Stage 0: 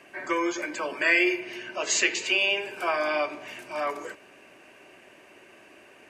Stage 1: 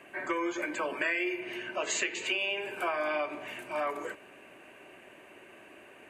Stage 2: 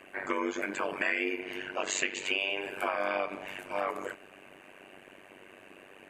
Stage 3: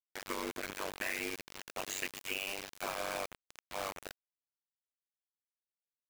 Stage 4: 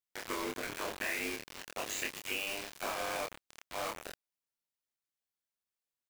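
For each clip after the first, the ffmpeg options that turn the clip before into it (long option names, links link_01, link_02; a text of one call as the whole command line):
ffmpeg -i in.wav -af "equalizer=frequency=5300:width_type=o:width=0.63:gain=-12.5,acompressor=threshold=-28dB:ratio=6" out.wav
ffmpeg -i in.wav -af "tremolo=f=96:d=0.947,volume=4dB" out.wav
ffmpeg -i in.wav -af "acrusher=bits=4:mix=0:aa=0.000001,volume=-8dB" out.wav
ffmpeg -i in.wav -filter_complex "[0:a]asplit=2[link_01][link_02];[link_02]adelay=27,volume=-3.5dB[link_03];[link_01][link_03]amix=inputs=2:normalize=0" out.wav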